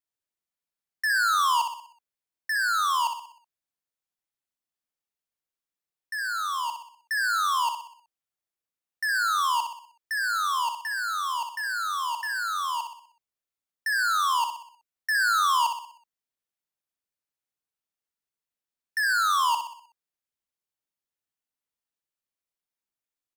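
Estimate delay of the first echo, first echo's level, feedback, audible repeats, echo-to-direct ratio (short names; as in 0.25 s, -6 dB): 62 ms, -7.0 dB, 48%, 5, -6.0 dB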